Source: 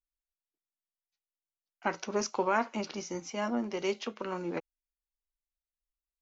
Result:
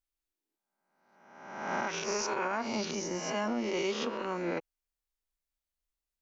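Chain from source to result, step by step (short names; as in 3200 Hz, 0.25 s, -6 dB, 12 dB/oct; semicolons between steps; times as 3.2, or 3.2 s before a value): spectral swells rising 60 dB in 1.07 s; 1.88–2.45 fifteen-band EQ 250 Hz -10 dB, 630 Hz -3 dB, 2500 Hz +7 dB; limiter -23 dBFS, peak gain reduction 10 dB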